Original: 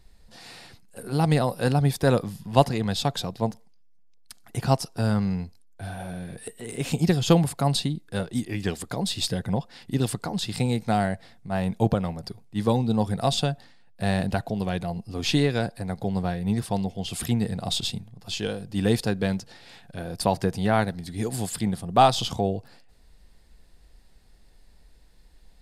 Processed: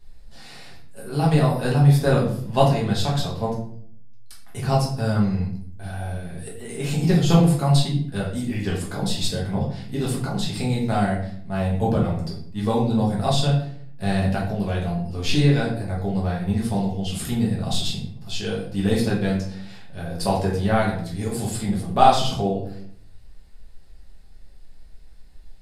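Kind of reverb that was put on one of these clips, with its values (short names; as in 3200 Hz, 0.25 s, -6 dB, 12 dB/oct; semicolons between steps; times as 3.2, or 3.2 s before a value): shoebox room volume 86 m³, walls mixed, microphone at 1.4 m; gain -4.5 dB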